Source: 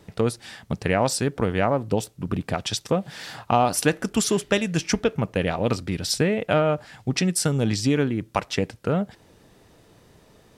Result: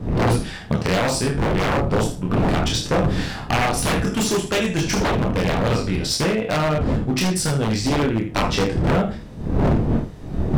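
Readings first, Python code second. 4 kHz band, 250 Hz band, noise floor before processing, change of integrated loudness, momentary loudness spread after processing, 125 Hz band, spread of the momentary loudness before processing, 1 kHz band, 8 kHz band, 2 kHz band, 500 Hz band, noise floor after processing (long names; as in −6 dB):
+4.5 dB, +4.0 dB, −56 dBFS, +3.0 dB, 4 LU, +6.0 dB, 7 LU, +3.0 dB, +1.5 dB, +4.5 dB, +2.0 dB, −34 dBFS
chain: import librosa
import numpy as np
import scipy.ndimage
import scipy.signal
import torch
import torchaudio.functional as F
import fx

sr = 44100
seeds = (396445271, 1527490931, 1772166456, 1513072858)

p1 = fx.spec_trails(x, sr, decay_s=0.33)
p2 = fx.dmg_wind(p1, sr, seeds[0], corner_hz=190.0, level_db=-25.0)
p3 = np.sign(p2) * np.maximum(np.abs(p2) - 10.0 ** (-27.5 / 20.0), 0.0)
p4 = p2 + (p3 * 10.0 ** (-8.0 / 20.0))
p5 = fx.high_shelf(p4, sr, hz=8100.0, db=-8.5)
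p6 = p5 + fx.room_early_taps(p5, sr, ms=(27, 78), db=(-3.0, -9.5), dry=0)
p7 = 10.0 ** (-13.0 / 20.0) * (np.abs((p6 / 10.0 ** (-13.0 / 20.0) + 3.0) % 4.0 - 2.0) - 1.0)
y = fx.rider(p7, sr, range_db=5, speed_s=0.5)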